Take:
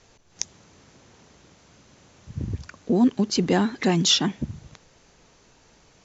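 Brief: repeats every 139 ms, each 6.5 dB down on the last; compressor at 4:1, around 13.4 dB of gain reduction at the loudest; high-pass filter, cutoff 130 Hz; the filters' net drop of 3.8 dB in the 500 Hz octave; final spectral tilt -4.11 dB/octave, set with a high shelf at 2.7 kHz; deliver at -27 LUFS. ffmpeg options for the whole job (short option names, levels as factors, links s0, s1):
-af "highpass=130,equalizer=f=500:t=o:g=-5.5,highshelf=f=2700:g=-3,acompressor=threshold=0.0251:ratio=4,aecho=1:1:139|278|417|556|695|834:0.473|0.222|0.105|0.0491|0.0231|0.0109,volume=2.51"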